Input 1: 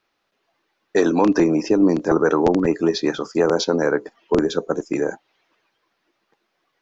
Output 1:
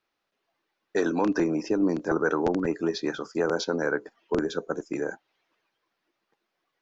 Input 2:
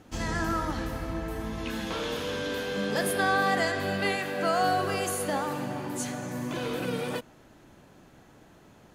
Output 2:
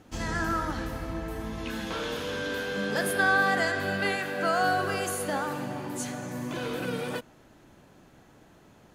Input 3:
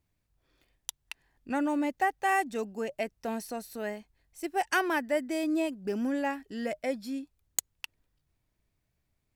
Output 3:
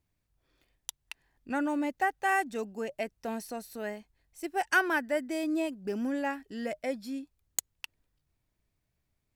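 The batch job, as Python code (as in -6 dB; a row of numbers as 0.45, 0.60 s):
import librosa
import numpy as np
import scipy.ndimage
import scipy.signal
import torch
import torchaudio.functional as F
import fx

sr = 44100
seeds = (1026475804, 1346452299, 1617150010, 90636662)

y = fx.dynamic_eq(x, sr, hz=1500.0, q=5.3, threshold_db=-46.0, ratio=4.0, max_db=7)
y = librosa.util.normalize(y) * 10.0 ** (-12 / 20.0)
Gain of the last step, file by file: -8.0, -1.0, -1.5 dB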